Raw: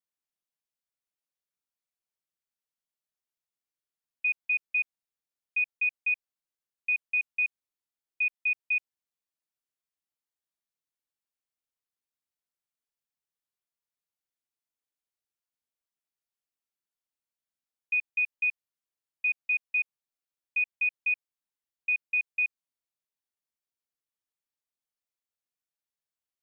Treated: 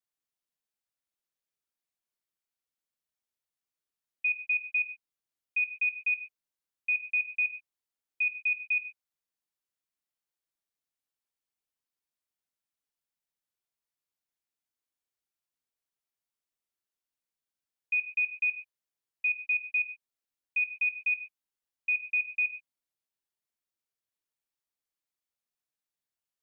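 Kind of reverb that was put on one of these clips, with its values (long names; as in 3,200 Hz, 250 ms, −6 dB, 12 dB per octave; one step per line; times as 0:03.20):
reverb whose tail is shaped and stops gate 150 ms rising, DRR 8.5 dB
level −1 dB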